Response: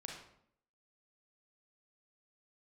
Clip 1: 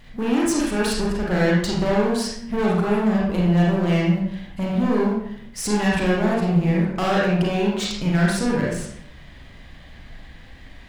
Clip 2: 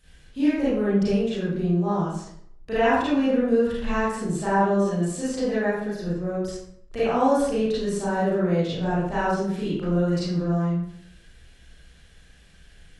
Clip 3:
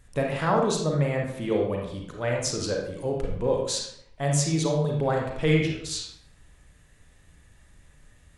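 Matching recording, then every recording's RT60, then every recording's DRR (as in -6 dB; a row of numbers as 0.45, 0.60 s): 3; 0.65, 0.65, 0.65 s; -4.5, -11.5, -0.5 dB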